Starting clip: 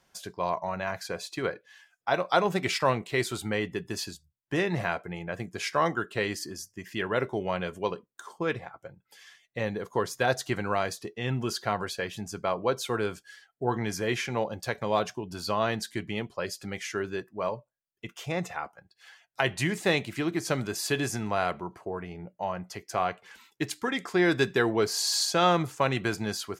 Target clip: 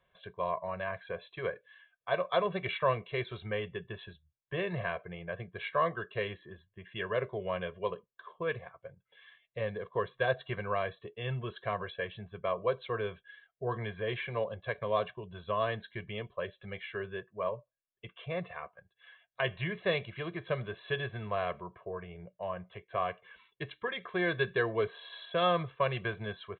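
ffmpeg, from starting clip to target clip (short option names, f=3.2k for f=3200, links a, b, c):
-af "aecho=1:1:1.8:0.98,aresample=8000,aresample=44100,volume=-8dB"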